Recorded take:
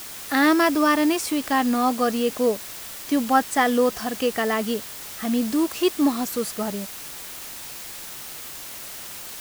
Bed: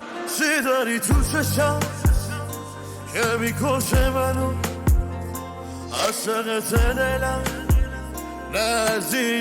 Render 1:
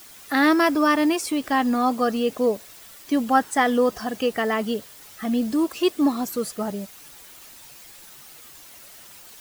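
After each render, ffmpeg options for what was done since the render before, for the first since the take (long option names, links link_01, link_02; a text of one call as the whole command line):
ffmpeg -i in.wav -af "afftdn=noise_reduction=10:noise_floor=-37" out.wav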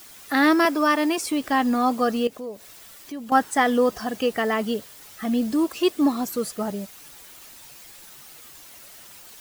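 ffmpeg -i in.wav -filter_complex "[0:a]asettb=1/sr,asplit=3[link_01][link_02][link_03];[link_01]atrim=end=0.654[link_04];[link_02]atrim=start=0.65:end=1.18,asetpts=PTS-STARTPTS,afade=type=in:duration=0.004:curve=qsin,afade=type=out:start_time=0.526:duration=0.004:curve=qsin,highpass=300[link_05];[link_03]atrim=start=1.176[link_06];[link_04][link_05]acrossfade=duration=0.004:curve1=hsin:curve2=qsin[link_07];[link_07][link_06]acrossfade=duration=0.004:curve1=qsin:curve2=hsin,asettb=1/sr,asplit=3[link_08][link_09][link_10];[link_08]atrim=end=2.274[link_11];[link_09]atrim=start=2.27:end=3.32,asetpts=PTS-STARTPTS,afade=type=in:duration=0.004:curve=qsin,afade=type=out:start_time=1.046:duration=0.004:curve=qsin,acompressor=threshold=-41dB:ratio=2:attack=3.2:release=140:knee=1:detection=peak[link_12];[link_10]atrim=start=3.316[link_13];[link_11][link_12]acrossfade=duration=0.004:curve1=hsin:curve2=qsin[link_14];[link_14][link_13]acrossfade=duration=0.004:curve1=qsin:curve2=hsin" out.wav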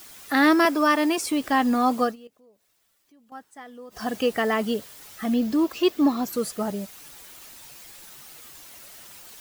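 ffmpeg -i in.wav -filter_complex "[0:a]asettb=1/sr,asplit=3[link_01][link_02][link_03];[link_01]atrim=end=5.344[link_04];[link_02]atrim=start=5.34:end=6.33,asetpts=PTS-STARTPTS,afade=type=in:duration=0.004:curve=qsin,afade=type=out:start_time=0.986:duration=0.004:curve=qsin,equalizer=frequency=9200:width=1.7:gain=-9[link_05];[link_03]atrim=start=6.326[link_06];[link_04][link_05]acrossfade=duration=0.004:curve1=hsin:curve2=qsin[link_07];[link_07][link_06]acrossfade=duration=0.004:curve1=qsin:curve2=hsin,asplit=3[link_08][link_09][link_10];[link_08]atrim=end=2.16,asetpts=PTS-STARTPTS,afade=type=out:start_time=2.03:duration=0.13:silence=0.0707946[link_11];[link_09]atrim=start=2.16:end=3.9,asetpts=PTS-STARTPTS,volume=-23dB[link_12];[link_10]atrim=start=3.9,asetpts=PTS-STARTPTS,afade=type=in:duration=0.13:silence=0.0707946[link_13];[link_11][link_12][link_13]concat=n=3:v=0:a=1" out.wav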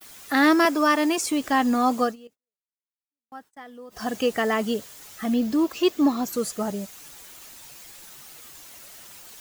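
ffmpeg -i in.wav -af "agate=range=-44dB:threshold=-49dB:ratio=16:detection=peak,adynamicequalizer=threshold=0.00224:dfrequency=6800:dqfactor=3.1:tfrequency=6800:tqfactor=3.1:attack=5:release=100:ratio=0.375:range=3:mode=boostabove:tftype=bell" out.wav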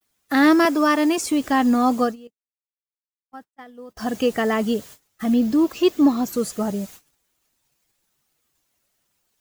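ffmpeg -i in.wav -af "lowshelf=frequency=390:gain=6.5,agate=range=-27dB:threshold=-40dB:ratio=16:detection=peak" out.wav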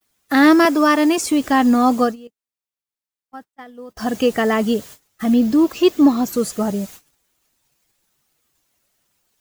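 ffmpeg -i in.wav -af "volume=3.5dB" out.wav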